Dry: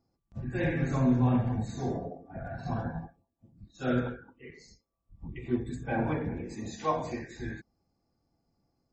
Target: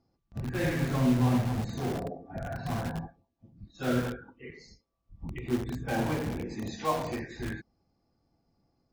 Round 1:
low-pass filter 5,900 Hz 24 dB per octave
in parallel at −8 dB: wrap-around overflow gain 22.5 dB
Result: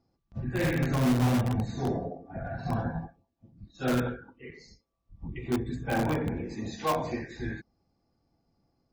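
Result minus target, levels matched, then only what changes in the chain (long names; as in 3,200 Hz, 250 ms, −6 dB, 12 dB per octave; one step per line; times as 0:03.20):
wrap-around overflow: distortion −10 dB
change: wrap-around overflow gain 30 dB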